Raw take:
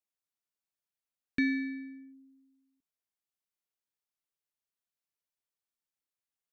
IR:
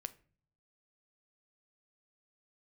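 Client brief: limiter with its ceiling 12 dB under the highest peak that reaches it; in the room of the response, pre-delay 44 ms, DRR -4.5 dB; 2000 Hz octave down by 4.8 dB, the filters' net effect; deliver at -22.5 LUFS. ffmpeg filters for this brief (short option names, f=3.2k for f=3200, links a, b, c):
-filter_complex "[0:a]equalizer=f=2k:t=o:g=-5.5,alimiter=level_in=9.5dB:limit=-24dB:level=0:latency=1,volume=-9.5dB,asplit=2[a][b];[1:a]atrim=start_sample=2205,adelay=44[c];[b][c]afir=irnorm=-1:irlink=0,volume=7.5dB[d];[a][d]amix=inputs=2:normalize=0,volume=12dB"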